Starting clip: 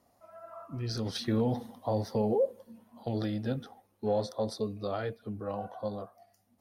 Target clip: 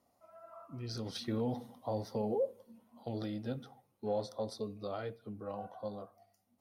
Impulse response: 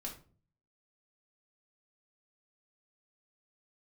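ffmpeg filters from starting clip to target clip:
-filter_complex "[0:a]lowshelf=f=63:g=-7,bandreject=f=1.7k:w=10,asplit=2[a][b];[1:a]atrim=start_sample=2205[c];[b][c]afir=irnorm=-1:irlink=0,volume=-14.5dB[d];[a][d]amix=inputs=2:normalize=0,volume=-6.5dB"

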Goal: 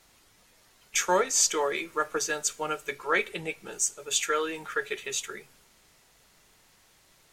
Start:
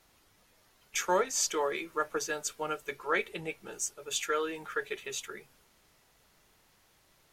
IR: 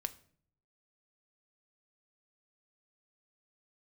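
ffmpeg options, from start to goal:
-filter_complex "[0:a]asplit=2[a][b];[b]equalizer=f=2k:t=o:w=1:g=5,equalizer=f=4k:t=o:w=1:g=4,equalizer=f=8k:t=o:w=1:g=11[c];[1:a]atrim=start_sample=2205[d];[c][d]afir=irnorm=-1:irlink=0,volume=-6.5dB[e];[a][e]amix=inputs=2:normalize=0"

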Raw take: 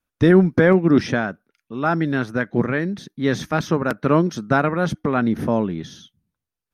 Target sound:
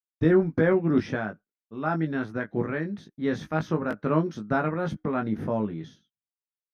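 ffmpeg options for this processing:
-filter_complex "[0:a]agate=range=-33dB:threshold=-33dB:ratio=3:detection=peak,highshelf=f=4.1k:g=-11.5,asplit=2[a][b];[b]adelay=19,volume=-5dB[c];[a][c]amix=inputs=2:normalize=0,volume=-8dB"

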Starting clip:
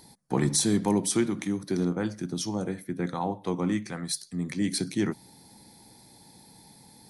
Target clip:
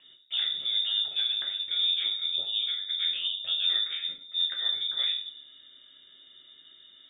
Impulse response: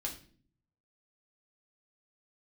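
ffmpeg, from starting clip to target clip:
-filter_complex "[0:a]acrossover=split=220|520|1300[a][b][c][d];[a]acompressor=threshold=-35dB:ratio=4[e];[b]acompressor=threshold=-31dB:ratio=4[f];[c]acompressor=threshold=-44dB:ratio=4[g];[d]acompressor=threshold=-39dB:ratio=4[h];[e][f][g][h]amix=inputs=4:normalize=0[i];[1:a]atrim=start_sample=2205[j];[i][j]afir=irnorm=-1:irlink=0,lowpass=f=3.2k:t=q:w=0.5098,lowpass=f=3.2k:t=q:w=0.6013,lowpass=f=3.2k:t=q:w=0.9,lowpass=f=3.2k:t=q:w=2.563,afreqshift=-3800"

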